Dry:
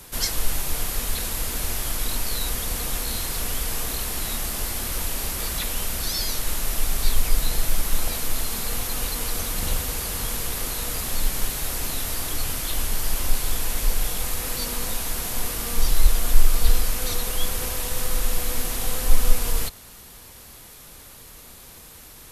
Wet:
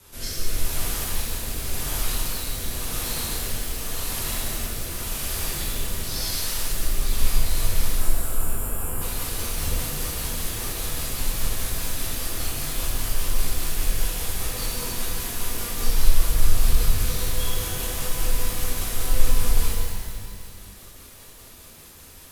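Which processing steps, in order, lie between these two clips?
rotating-speaker cabinet horn 0.9 Hz, later 5 Hz, at 0:06.90
time-frequency box erased 0:07.96–0:09.01, 1,700–6,900 Hz
reverb with rising layers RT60 2 s, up +12 semitones, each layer −8 dB, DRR −7.5 dB
level −7 dB

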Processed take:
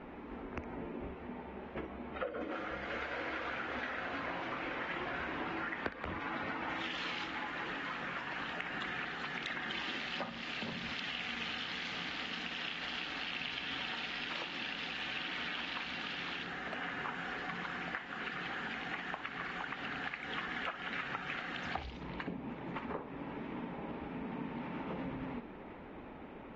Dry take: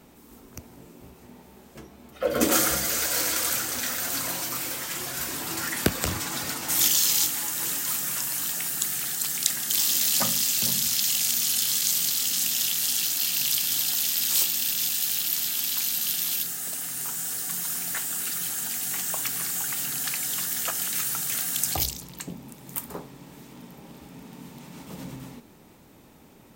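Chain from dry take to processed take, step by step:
low-pass filter 2,400 Hz 24 dB per octave
parametric band 120 Hz −10.5 dB 1.1 octaves
downward compressor 16 to 1, threshold −43 dBFS, peak gain reduction 25.5 dB
feedback echo with a high-pass in the loop 62 ms, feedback 27%, high-pass 860 Hz, level −11 dB
level +6.5 dB
AAC 24 kbit/s 48,000 Hz

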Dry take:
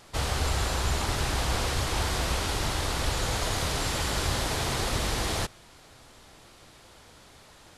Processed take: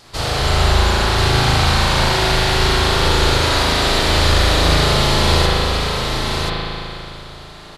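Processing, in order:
parametric band 4,400 Hz +8 dB 0.6 octaves
single-tap delay 1,033 ms −4 dB
spring reverb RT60 2.8 s, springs 37 ms, chirp 25 ms, DRR −7.5 dB
level +4 dB

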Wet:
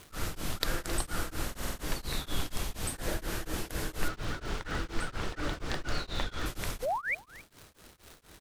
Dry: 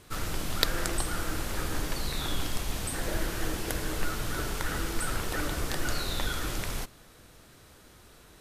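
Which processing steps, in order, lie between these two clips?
0:04.08–0:06.46: low-pass filter 5,000 Hz 12 dB per octave
0:06.82–0:07.15: sound drawn into the spectrogram rise 460–2,500 Hz −29 dBFS
single-tap delay 268 ms −20.5 dB
surface crackle 280 per second −39 dBFS
buffer that repeats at 0:01.46, samples 2,048, times 7
tremolo along a rectified sine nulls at 4.2 Hz

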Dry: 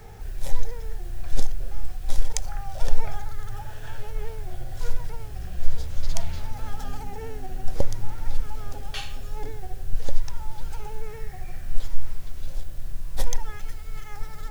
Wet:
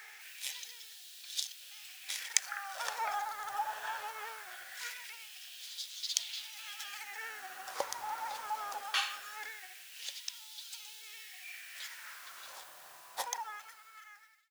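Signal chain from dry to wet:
fade-out on the ending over 2.11 s
auto-filter high-pass sine 0.21 Hz 900–3,600 Hz
level +1.5 dB

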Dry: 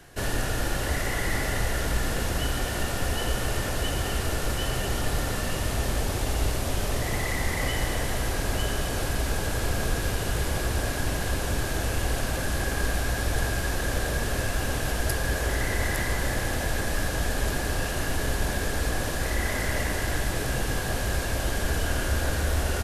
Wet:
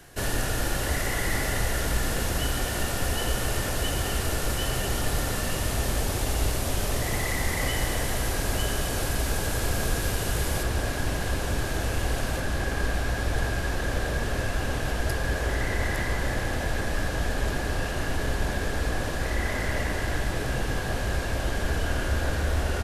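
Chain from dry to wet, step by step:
high-shelf EQ 6,500 Hz +4 dB, from 0:10.63 −4 dB, from 0:12.40 −9.5 dB

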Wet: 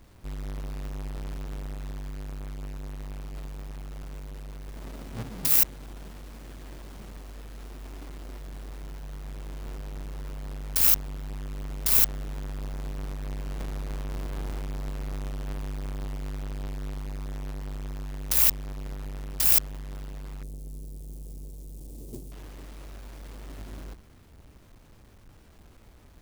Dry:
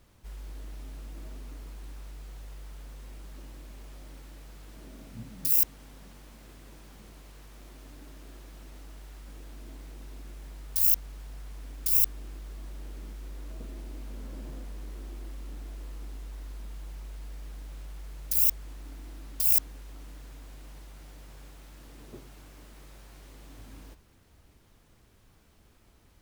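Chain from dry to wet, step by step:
each half-wave held at its own peak
0:20.43–0:22.32: drawn EQ curve 430 Hz 0 dB, 1,500 Hz −27 dB, 8,600 Hz +5 dB
level +2 dB

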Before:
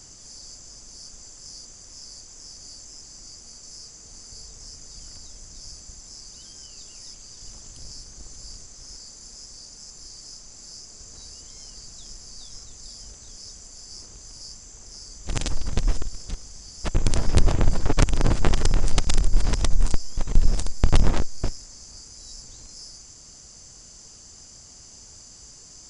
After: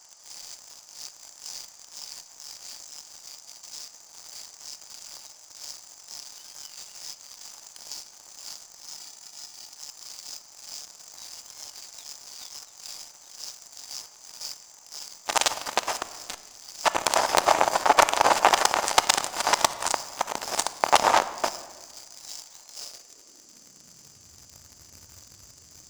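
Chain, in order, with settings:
high-pass filter sweep 810 Hz → 85 Hz, 0:22.61–0:24.37
leveller curve on the samples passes 3
0:08.94–0:09.73: notch comb filter 530 Hz
on a send: convolution reverb RT60 1.6 s, pre-delay 3 ms, DRR 12 dB
on the sum: level −1.5 dB

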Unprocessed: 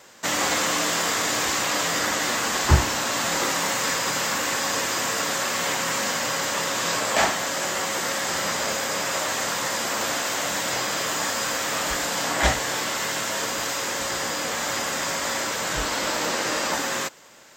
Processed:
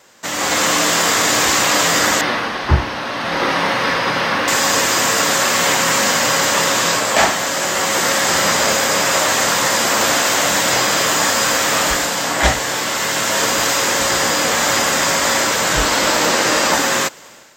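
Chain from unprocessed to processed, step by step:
automatic gain control gain up to 11.5 dB
0:02.21–0:04.48: moving average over 6 samples

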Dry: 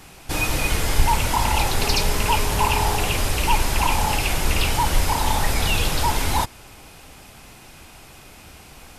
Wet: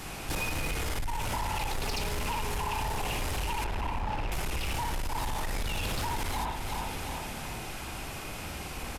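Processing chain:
0:03.64–0:04.32: head-to-tape spacing loss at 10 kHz 27 dB
repeating echo 362 ms, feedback 45%, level −16.5 dB
convolution reverb, pre-delay 58 ms, DRR 1 dB
brickwall limiter −10.5 dBFS, peak gain reduction 7.5 dB
downward compressor 6 to 1, threshold −30 dBFS, peak gain reduction 14.5 dB
soft clipping −30.5 dBFS, distortion −13 dB
level +4 dB

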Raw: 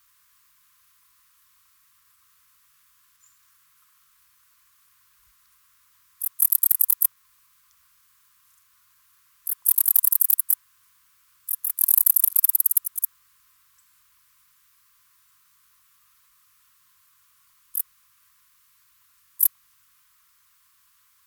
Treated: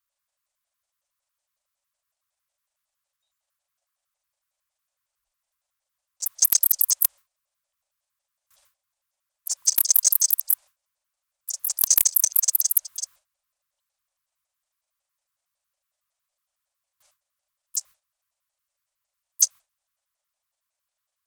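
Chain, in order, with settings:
pitch shifter gated in a rhythm −11 semitones, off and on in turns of 92 ms
wrap-around overflow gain 3.5 dB
noise gate with hold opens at −48 dBFS

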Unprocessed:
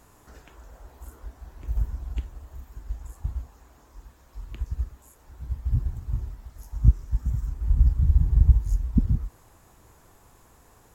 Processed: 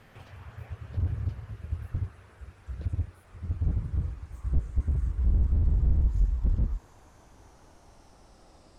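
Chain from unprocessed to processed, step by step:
gliding playback speed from 179% → 70%
high-frequency loss of the air 54 metres
slew-rate limiting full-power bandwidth 5.5 Hz
level +1 dB

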